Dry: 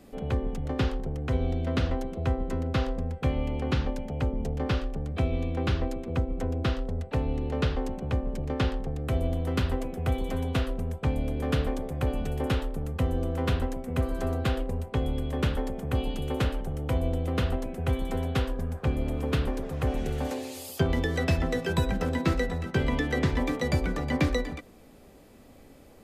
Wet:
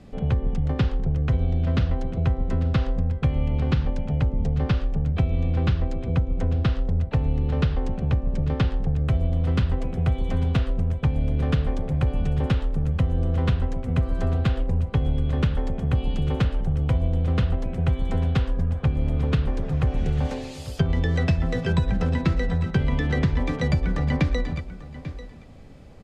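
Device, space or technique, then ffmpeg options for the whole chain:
jukebox: -af "lowpass=5800,lowshelf=frequency=210:width_type=q:width=1.5:gain=7,aecho=1:1:842:0.133,acompressor=threshold=-20dB:ratio=6,volume=2.5dB"

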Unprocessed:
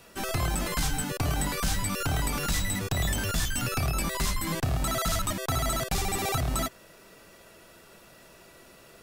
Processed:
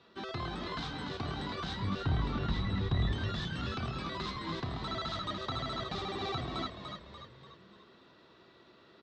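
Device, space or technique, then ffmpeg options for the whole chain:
frequency-shifting delay pedal into a guitar cabinet: -filter_complex "[0:a]asettb=1/sr,asplit=3[link_01][link_02][link_03];[link_01]atrim=end=1.804[link_04];[link_02]atrim=start=1.8:end=3.12,asetpts=PTS-STARTPTS,afade=type=in:duration=0.004:curve=qsin,afade=type=out:start_time=1.316:duration=0.004:curve=qsin,aemphasis=mode=reproduction:type=bsi[link_05];[link_03]atrim=start=3.116[link_06];[link_04][link_05]acrossfade=duration=0.004:curve1=hsin:curve2=qsin[link_07];[link_07][link_06]acrossfade=duration=0.004:curve1=qsin:curve2=hsin,asplit=7[link_08][link_09][link_10][link_11][link_12][link_13][link_14];[link_09]adelay=292,afreqshift=-62,volume=-6dB[link_15];[link_10]adelay=584,afreqshift=-124,volume=-12.7dB[link_16];[link_11]adelay=876,afreqshift=-186,volume=-19.5dB[link_17];[link_12]adelay=1168,afreqshift=-248,volume=-26.2dB[link_18];[link_13]adelay=1460,afreqshift=-310,volume=-33dB[link_19];[link_14]adelay=1752,afreqshift=-372,volume=-39.7dB[link_20];[link_08][link_15][link_16][link_17][link_18][link_19][link_20]amix=inputs=7:normalize=0,highpass=84,equalizer=frequency=220:width_type=q:width=4:gain=3,equalizer=frequency=370:width_type=q:width=4:gain=6,equalizer=frequency=590:width_type=q:width=4:gain=-3,equalizer=frequency=1100:width_type=q:width=4:gain=5,equalizer=frequency=2500:width_type=q:width=4:gain=-5,equalizer=frequency=3800:width_type=q:width=4:gain=9,lowpass=frequency=4200:width=0.5412,lowpass=frequency=4200:width=1.3066,volume=-9dB"

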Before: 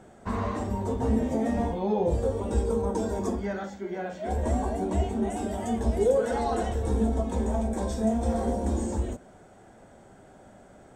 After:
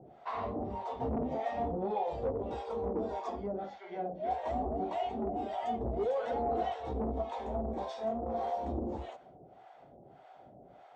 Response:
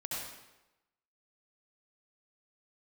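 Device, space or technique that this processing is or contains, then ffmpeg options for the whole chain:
guitar amplifier with harmonic tremolo: -filter_complex "[0:a]acrossover=split=640[link_01][link_02];[link_01]aeval=exprs='val(0)*(1-1/2+1/2*cos(2*PI*1.7*n/s))':channel_layout=same[link_03];[link_02]aeval=exprs='val(0)*(1-1/2-1/2*cos(2*PI*1.7*n/s))':channel_layout=same[link_04];[link_03][link_04]amix=inputs=2:normalize=0,asoftclip=type=tanh:threshold=-25.5dB,highpass=78,equalizer=frequency=93:width_type=q:width=4:gain=-9,equalizer=frequency=140:width_type=q:width=4:gain=4,equalizer=frequency=210:width_type=q:width=4:gain=-8,equalizer=frequency=730:width_type=q:width=4:gain=8,equalizer=frequency=1600:width_type=q:width=4:gain=-7,lowpass=frequency=4200:width=0.5412,lowpass=frequency=4200:width=1.3066,asettb=1/sr,asplit=3[link_05][link_06][link_07];[link_05]atrim=end=7.834[link_08];[link_06]atrim=start=7.83:end=8.44,asetpts=PTS-STARTPTS,afade=type=in:duration=0.004:curve=qsin,afade=type=out:start_time=0.606:duration=0.004:curve=qsin,lowshelf=frequency=160:gain=-8.5[link_09];[link_07]atrim=start=8.436[link_10];[link_08][link_09]acrossfade=duration=0.004:curve1=hsin:curve2=qsin[link_11];[link_11][link_10]acrossfade=duration=0.004:curve1=qsin:curve2=hsin"

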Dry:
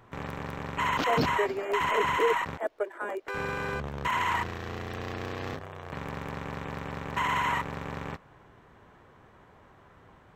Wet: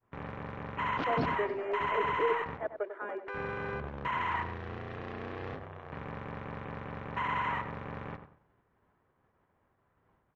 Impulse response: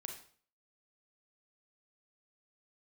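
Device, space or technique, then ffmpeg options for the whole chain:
hearing-loss simulation: -filter_complex "[0:a]lowpass=2600,agate=range=-33dB:threshold=-46dB:ratio=3:detection=peak,asplit=2[link_01][link_02];[link_02]adelay=95,lowpass=frequency=1700:poles=1,volume=-9dB,asplit=2[link_03][link_04];[link_04]adelay=95,lowpass=frequency=1700:poles=1,volume=0.28,asplit=2[link_05][link_06];[link_06]adelay=95,lowpass=frequency=1700:poles=1,volume=0.28[link_07];[link_01][link_03][link_05][link_07]amix=inputs=4:normalize=0,volume=-4.5dB"

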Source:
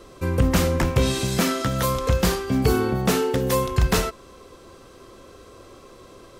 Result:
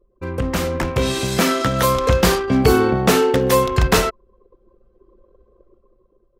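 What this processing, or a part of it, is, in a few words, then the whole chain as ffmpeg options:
voice memo with heavy noise removal: -af "anlmdn=10,dynaudnorm=framelen=260:gausssize=9:maxgain=16dB,bass=frequency=250:gain=-5,treble=frequency=4000:gain=-3"

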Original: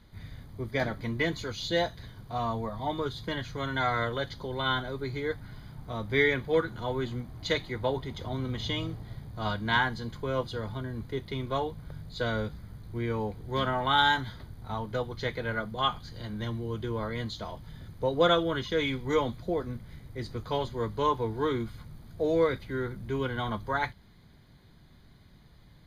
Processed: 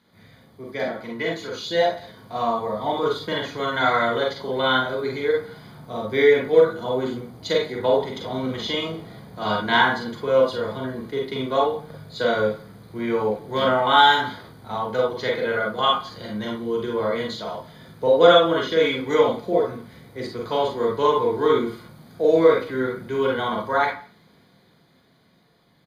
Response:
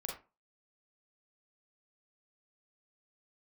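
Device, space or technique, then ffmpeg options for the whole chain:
far laptop microphone: -filter_complex "[0:a]asettb=1/sr,asplit=3[link_01][link_02][link_03];[link_01]atrim=end=5.814[link_04];[link_02]atrim=start=5.81:end=7.78,asetpts=PTS-STARTPTS,afade=type=in:duration=0.004:curve=qsin,afade=type=out:start_time=1.966:duration=0.004:curve=qsin,equalizer=frequency=1900:width=0.65:gain=-5.5[link_05];[link_03]atrim=start=7.776[link_06];[link_04][link_05]acrossfade=duration=0.004:curve1=hsin:curve2=qsin[link_07];[link_07][link_06]acrossfade=duration=0.004:curve1=qsin:curve2=hsin,aecho=1:1:169:0.0631[link_08];[1:a]atrim=start_sample=2205[link_09];[link_08][link_09]afir=irnorm=-1:irlink=0,highpass=200,dynaudnorm=framelen=230:gausssize=17:maxgain=7dB,volume=2dB"

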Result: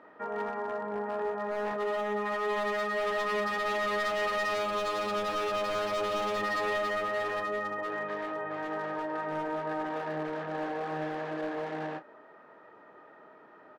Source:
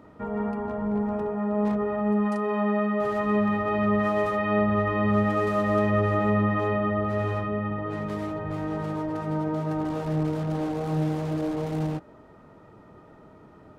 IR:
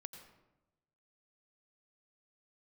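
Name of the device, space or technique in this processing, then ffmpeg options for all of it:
megaphone: -filter_complex "[0:a]highpass=470,lowpass=3200,equalizer=frequency=1700:width_type=o:width=0.22:gain=11,asoftclip=type=hard:threshold=-27.5dB,asplit=2[link_01][link_02];[link_02]adelay=31,volume=-12.5dB[link_03];[link_01][link_03]amix=inputs=2:normalize=0,asettb=1/sr,asplit=3[link_04][link_05][link_06];[link_04]atrim=end=4.544[link_07];[link_05]atrim=start=4.54:end=6.37,asetpts=PTS-STARTPTS,afade=type=in:duration=0.004:curve=qsin,afade=type=out:start_time=1.826:duration=0.004:curve=qsin,bandreject=frequency=1900:width=7.5[link_08];[link_06]atrim=start=6.366[link_09];[link_07][link_08]acrossfade=duration=0.004:curve1=hsin:curve2=qsin[link_10];[link_10][link_09]acrossfade=duration=0.004:curve1=qsin:curve2=hsin"

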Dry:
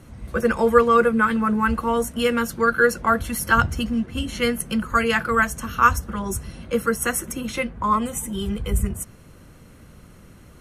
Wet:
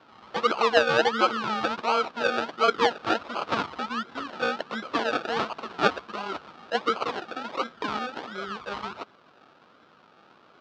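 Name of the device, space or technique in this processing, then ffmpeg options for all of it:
circuit-bent sampling toy: -af "acrusher=samples=34:mix=1:aa=0.000001:lfo=1:lforange=20.4:lforate=1.4,highpass=470,equalizer=frequency=530:width_type=q:width=4:gain=-3,equalizer=frequency=1300:width_type=q:width=4:gain=8,equalizer=frequency=2000:width_type=q:width=4:gain=-6,lowpass=frequency=4500:width=0.5412,lowpass=frequency=4500:width=1.3066,volume=-1dB"

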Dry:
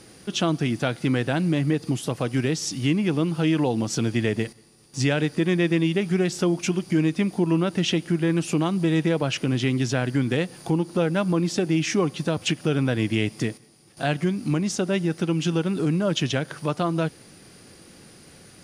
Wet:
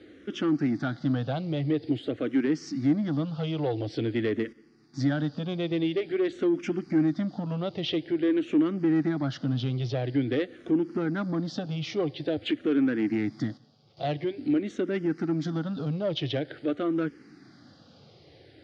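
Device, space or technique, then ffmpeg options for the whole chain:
barber-pole phaser into a guitar amplifier: -filter_complex "[0:a]asplit=2[link_01][link_02];[link_02]afreqshift=-0.48[link_03];[link_01][link_03]amix=inputs=2:normalize=1,asoftclip=type=tanh:threshold=-19.5dB,highpass=77,equalizer=frequency=180:width_type=q:width=4:gain=-7,equalizer=frequency=290:width_type=q:width=4:gain=7,equalizer=frequency=980:width_type=q:width=4:gain=-9,equalizer=frequency=2600:width_type=q:width=4:gain=-8,lowpass=frequency=4200:width=0.5412,lowpass=frequency=4200:width=1.3066,asettb=1/sr,asplit=3[link_04][link_05][link_06];[link_04]atrim=end=8.324[link_07];[link_05]atrim=start=8.32:end=10.07,asetpts=PTS-STARTPTS,afade=type=in:duration=0.004:curve=qsin,afade=type=out:start_time=1.746:duration=0.004:curve=qsin,equalizer=frequency=9600:width=1.4:gain=-4.5[link_08];[link_06]atrim=start=10.066[link_09];[link_07][link_08]acrossfade=duration=0.004:curve1=hsin:curve2=qsin[link_10];[link_10][link_09]acrossfade=duration=0.004:curve1=qsin:curve2=hsin"

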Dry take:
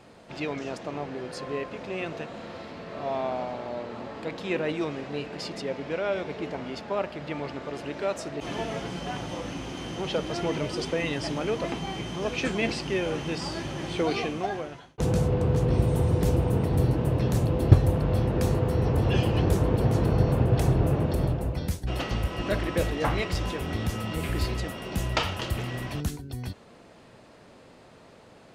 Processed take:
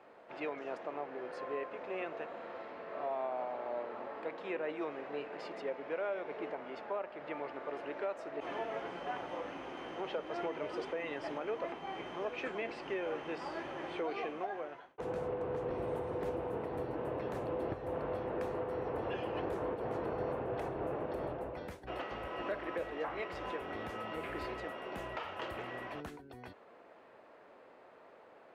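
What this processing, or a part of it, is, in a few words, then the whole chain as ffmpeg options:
DJ mixer with the lows and highs turned down: -filter_complex "[0:a]acrossover=split=340 2400:gain=0.0891 1 0.1[link_01][link_02][link_03];[link_01][link_02][link_03]amix=inputs=3:normalize=0,alimiter=level_in=1dB:limit=-24dB:level=0:latency=1:release=273,volume=-1dB,volume=-3dB"

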